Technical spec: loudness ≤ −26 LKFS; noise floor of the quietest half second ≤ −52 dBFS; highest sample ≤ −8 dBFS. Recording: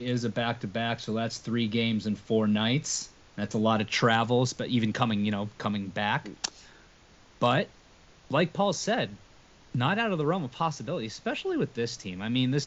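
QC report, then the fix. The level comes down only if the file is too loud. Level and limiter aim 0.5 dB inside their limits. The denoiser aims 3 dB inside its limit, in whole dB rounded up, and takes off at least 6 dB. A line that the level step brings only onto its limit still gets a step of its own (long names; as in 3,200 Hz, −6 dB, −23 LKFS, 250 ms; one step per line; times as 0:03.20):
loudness −28.5 LKFS: in spec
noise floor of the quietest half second −56 dBFS: in spec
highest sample −8.5 dBFS: in spec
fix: no processing needed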